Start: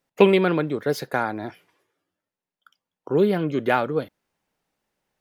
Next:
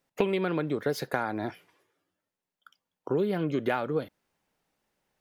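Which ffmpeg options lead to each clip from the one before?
ffmpeg -i in.wav -af "acompressor=threshold=-24dB:ratio=6" out.wav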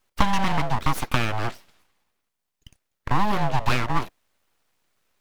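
ffmpeg -i in.wav -af "afreqshift=110,aeval=exprs='abs(val(0))':channel_layout=same,volume=8.5dB" out.wav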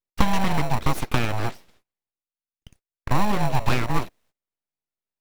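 ffmpeg -i in.wav -filter_complex "[0:a]agate=range=-25dB:threshold=-56dB:ratio=16:detection=peak,asplit=2[link_01][link_02];[link_02]acrusher=samples=27:mix=1:aa=0.000001,volume=-5dB[link_03];[link_01][link_03]amix=inputs=2:normalize=0,volume=-2dB" out.wav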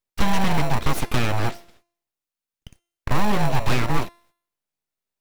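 ffmpeg -i in.wav -af "bandreject=frequency=344.1:width_type=h:width=4,bandreject=frequency=688.2:width_type=h:width=4,bandreject=frequency=1032.3:width_type=h:width=4,bandreject=frequency=1376.4:width_type=h:width=4,bandreject=frequency=1720.5:width_type=h:width=4,bandreject=frequency=2064.6:width_type=h:width=4,bandreject=frequency=2408.7:width_type=h:width=4,bandreject=frequency=2752.8:width_type=h:width=4,bandreject=frequency=3096.9:width_type=h:width=4,bandreject=frequency=3441:width_type=h:width=4,bandreject=frequency=3785.1:width_type=h:width=4,bandreject=frequency=4129.2:width_type=h:width=4,bandreject=frequency=4473.3:width_type=h:width=4,bandreject=frequency=4817.4:width_type=h:width=4,bandreject=frequency=5161.5:width_type=h:width=4,bandreject=frequency=5505.6:width_type=h:width=4,bandreject=frequency=5849.7:width_type=h:width=4,bandreject=frequency=6193.8:width_type=h:width=4,bandreject=frequency=6537.9:width_type=h:width=4,bandreject=frequency=6882:width_type=h:width=4,bandreject=frequency=7226.1:width_type=h:width=4,bandreject=frequency=7570.2:width_type=h:width=4,bandreject=frequency=7914.3:width_type=h:width=4,bandreject=frequency=8258.4:width_type=h:width=4,bandreject=frequency=8602.5:width_type=h:width=4,bandreject=frequency=8946.6:width_type=h:width=4,bandreject=frequency=9290.7:width_type=h:width=4,bandreject=frequency=9634.8:width_type=h:width=4,bandreject=frequency=9978.9:width_type=h:width=4,bandreject=frequency=10323:width_type=h:width=4,bandreject=frequency=10667.1:width_type=h:width=4,bandreject=frequency=11011.2:width_type=h:width=4,bandreject=frequency=11355.3:width_type=h:width=4,bandreject=frequency=11699.4:width_type=h:width=4,bandreject=frequency=12043.5:width_type=h:width=4,bandreject=frequency=12387.6:width_type=h:width=4,bandreject=frequency=12731.7:width_type=h:width=4,bandreject=frequency=13075.8:width_type=h:width=4,bandreject=frequency=13419.9:width_type=h:width=4,asoftclip=type=tanh:threshold=-13dB,volume=4.5dB" out.wav

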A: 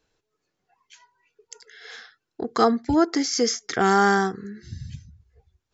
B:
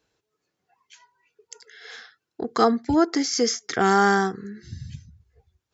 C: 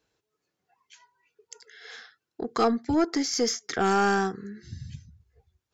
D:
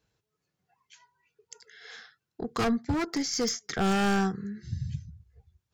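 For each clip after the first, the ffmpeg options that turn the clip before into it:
ffmpeg -i in.wav -af "highpass=61" out.wav
ffmpeg -i in.wav -af "aeval=exprs='(tanh(3.55*val(0)+0.15)-tanh(0.15))/3.55':channel_layout=same,volume=-2.5dB" out.wav
ffmpeg -i in.wav -af "aeval=exprs='0.106*(abs(mod(val(0)/0.106+3,4)-2)-1)':channel_layout=same,lowshelf=frequency=220:width_type=q:width=1.5:gain=7,volume=-2dB" out.wav

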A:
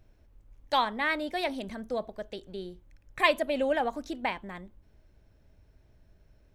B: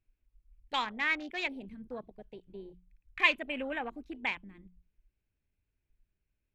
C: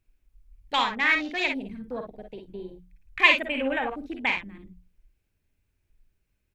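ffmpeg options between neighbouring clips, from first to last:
ffmpeg -i in.wav -af "equalizer=frequency=630:width_type=o:width=0.67:gain=-8,equalizer=frequency=2500:width_type=o:width=0.67:gain=11,equalizer=frequency=6300:width_type=o:width=0.67:gain=-7,afwtdn=0.0158,bandreject=frequency=60:width_type=h:width=6,bandreject=frequency=120:width_type=h:width=6,bandreject=frequency=180:width_type=h:width=6,volume=-5.5dB" out.wav
ffmpeg -i in.wav -af "aecho=1:1:49|60:0.473|0.376,volume=7dB" out.wav

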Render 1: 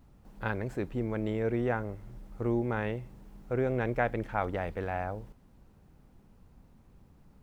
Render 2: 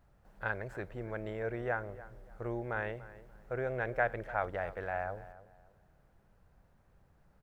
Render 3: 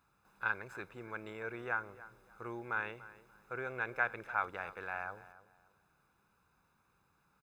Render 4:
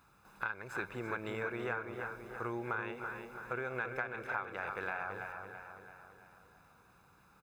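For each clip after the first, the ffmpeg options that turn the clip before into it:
ffmpeg -i in.wav -filter_complex "[0:a]equalizer=frequency=250:width_type=o:width=0.67:gain=-8,equalizer=frequency=630:width_type=o:width=0.67:gain=7,equalizer=frequency=1600:width_type=o:width=0.67:gain=9,asplit=2[link_01][link_02];[link_02]adelay=291,lowpass=frequency=2000:poles=1,volume=-16dB,asplit=2[link_03][link_04];[link_04]adelay=291,lowpass=frequency=2000:poles=1,volume=0.29,asplit=2[link_05][link_06];[link_06]adelay=291,lowpass=frequency=2000:poles=1,volume=0.29[link_07];[link_01][link_03][link_05][link_07]amix=inputs=4:normalize=0,volume=-7.5dB" out.wav
ffmpeg -i in.wav -af "highpass=frequency=730:poles=1,aecho=1:1:0.8:0.69,volume=1dB" out.wav
ffmpeg -i in.wav -filter_complex "[0:a]acompressor=threshold=-42dB:ratio=12,asplit=2[link_01][link_02];[link_02]adelay=333,lowpass=frequency=4500:poles=1,volume=-6.5dB,asplit=2[link_03][link_04];[link_04]adelay=333,lowpass=frequency=4500:poles=1,volume=0.54,asplit=2[link_05][link_06];[link_06]adelay=333,lowpass=frequency=4500:poles=1,volume=0.54,asplit=2[link_07][link_08];[link_08]adelay=333,lowpass=frequency=4500:poles=1,volume=0.54,asplit=2[link_09][link_10];[link_10]adelay=333,lowpass=frequency=4500:poles=1,volume=0.54,asplit=2[link_11][link_12];[link_12]adelay=333,lowpass=frequency=4500:poles=1,volume=0.54,asplit=2[link_13][link_14];[link_14]adelay=333,lowpass=frequency=4500:poles=1,volume=0.54[link_15];[link_03][link_05][link_07][link_09][link_11][link_13][link_15]amix=inputs=7:normalize=0[link_16];[link_01][link_16]amix=inputs=2:normalize=0,volume=8dB" out.wav

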